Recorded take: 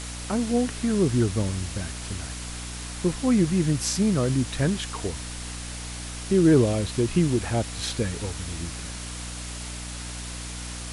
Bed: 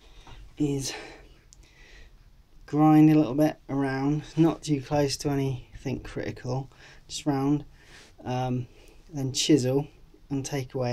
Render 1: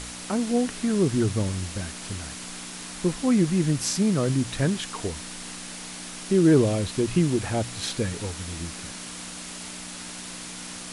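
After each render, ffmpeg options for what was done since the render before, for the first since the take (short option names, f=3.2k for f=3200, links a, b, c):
-af "bandreject=f=60:t=h:w=4,bandreject=f=120:t=h:w=4"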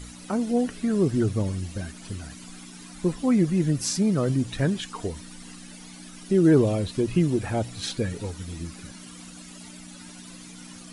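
-af "afftdn=nr=13:nf=-38"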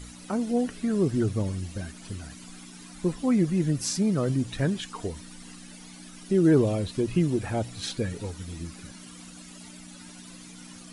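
-af "volume=-2dB"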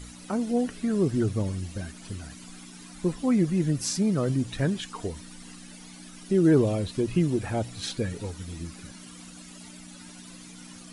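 -af anull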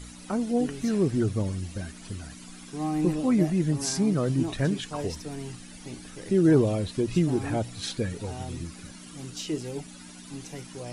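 -filter_complex "[1:a]volume=-10.5dB[a];[0:a][a]amix=inputs=2:normalize=0"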